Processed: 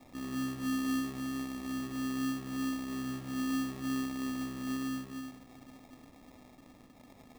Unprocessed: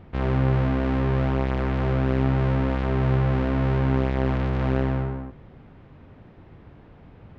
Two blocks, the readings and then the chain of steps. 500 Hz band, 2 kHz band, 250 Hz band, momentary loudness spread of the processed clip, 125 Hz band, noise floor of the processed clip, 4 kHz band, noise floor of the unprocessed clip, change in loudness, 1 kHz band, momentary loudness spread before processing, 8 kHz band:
-22.5 dB, -9.0 dB, -7.0 dB, 20 LU, -25.0 dB, -58 dBFS, -2.0 dB, -49 dBFS, -12.5 dB, -13.0 dB, 4 LU, no reading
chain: zero-crossing glitches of -21.5 dBFS; in parallel at +2 dB: peak limiter -23 dBFS, peak gain reduction 11 dB; on the sum: hum 50 Hz, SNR 18 dB; vowel filter i; echo that smears into a reverb 455 ms, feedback 59%, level -14 dB; sample-rate reducer 1.5 kHz, jitter 0%; trim -7 dB

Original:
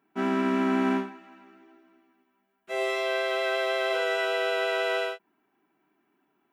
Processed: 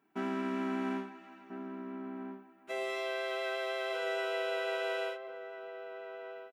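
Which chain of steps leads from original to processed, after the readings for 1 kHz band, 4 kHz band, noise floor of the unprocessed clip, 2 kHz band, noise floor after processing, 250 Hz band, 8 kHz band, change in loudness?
-8.0 dB, -8.5 dB, -74 dBFS, -8.5 dB, -59 dBFS, -8.5 dB, -8.5 dB, -10.0 dB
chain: compression 2:1, threshold -36 dBFS, peak gain reduction 8.5 dB; echo from a far wall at 230 m, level -7 dB; trim -2 dB

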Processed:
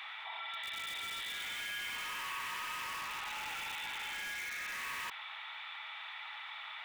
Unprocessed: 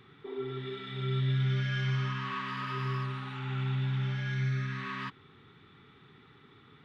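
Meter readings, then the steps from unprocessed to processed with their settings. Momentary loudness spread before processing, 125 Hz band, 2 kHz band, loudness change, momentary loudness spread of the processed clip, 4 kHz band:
9 LU, -37.5 dB, +1.5 dB, -6.0 dB, 6 LU, +3.0 dB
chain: rippled Chebyshev high-pass 630 Hz, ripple 9 dB; in parallel at -4.5 dB: integer overflow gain 43.5 dB; on the sum: level flattener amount 70%; trim +1 dB

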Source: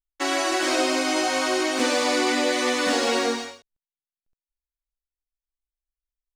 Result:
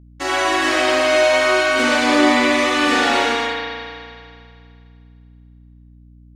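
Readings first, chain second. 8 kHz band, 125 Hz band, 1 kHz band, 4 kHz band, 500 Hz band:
0.0 dB, no reading, +7.5 dB, +5.0 dB, +7.0 dB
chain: spring tank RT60 2.3 s, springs 37 ms, chirp 60 ms, DRR -8 dB; hum 60 Hz, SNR 26 dB

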